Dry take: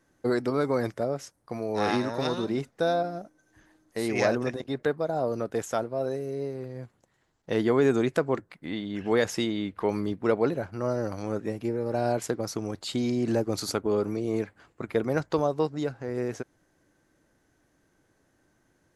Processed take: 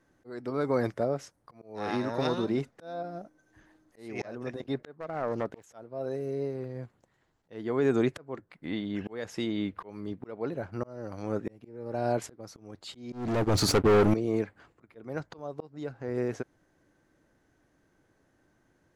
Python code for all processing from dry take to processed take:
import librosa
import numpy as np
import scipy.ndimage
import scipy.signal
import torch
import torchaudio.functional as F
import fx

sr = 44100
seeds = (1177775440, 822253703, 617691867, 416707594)

y = fx.chain(x, sr, fx.self_delay(depth_ms=0.35),
    fx.high_shelf(hz=6000.0, db=-4.0), at=(4.97, 5.64))
y = fx.chain(y, sr, fx.low_shelf(hz=130.0, db=10.0),
    fx.leveller(passes=3),
    fx.clip_hard(threshold_db=-18.0), at=(13.12, 14.14))
y = fx.high_shelf(y, sr, hz=5000.0, db=-8.0)
y = fx.auto_swell(y, sr, attack_ms=544.0)